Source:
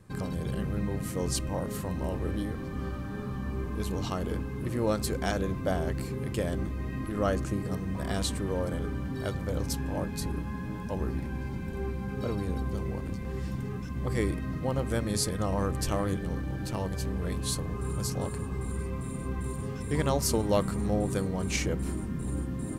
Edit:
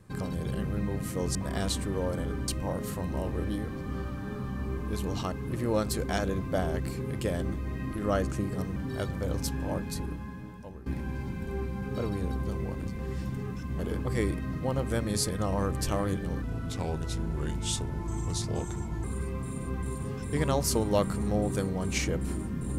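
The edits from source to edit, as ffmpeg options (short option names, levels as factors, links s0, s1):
-filter_complex "[0:a]asplit=10[s0][s1][s2][s3][s4][s5][s6][s7][s8][s9];[s0]atrim=end=1.352[s10];[s1]atrim=start=7.888:end=9.022[s11];[s2]atrim=start=1.348:end=4.192[s12];[s3]atrim=start=4.448:end=7.892[s13];[s4]atrim=start=9.018:end=11.12,asetpts=PTS-STARTPTS,afade=t=out:st=1.022:d=1.08:silence=0.133352[s14];[s5]atrim=start=11.12:end=14.052,asetpts=PTS-STARTPTS,afade=t=in:d=0.004:c=hsin:silence=0.133352[s15];[s6]atrim=start=4.188:end=4.452[s16];[s7]atrim=start=14.048:end=16.424[s17];[s8]atrim=start=16.42:end=18.62,asetpts=PTS-STARTPTS,asetrate=37044,aresample=44100[s18];[s9]atrim=start=18.616[s19];[s10][s11]acrossfade=d=0.004:c1=hsin:c2=hsin[s20];[s20][s12]acrossfade=d=0.004:c1=hsin:c2=hsin[s21];[s21][s13]acrossfade=d=0.004:c1=hsin:c2=hsin[s22];[s14][s15]concat=n=2:v=0:a=1[s23];[s22][s23]acrossfade=d=0.004:c1=hsin:c2=hsin[s24];[s24][s16]acrossfade=d=0.004:c1=hsin:c2=hsin[s25];[s25][s17]acrossfade=d=0.004:c1=hsin:c2=hsin[s26];[s26][s18]acrossfade=d=0.004:c1=hsin:c2=hsin[s27];[s27][s19]acrossfade=d=0.004:c1=hsin:c2=hsin"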